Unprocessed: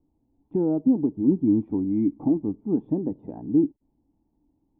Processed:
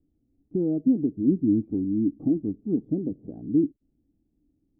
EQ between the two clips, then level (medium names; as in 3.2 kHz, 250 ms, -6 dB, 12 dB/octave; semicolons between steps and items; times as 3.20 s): boxcar filter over 47 samples; 0.0 dB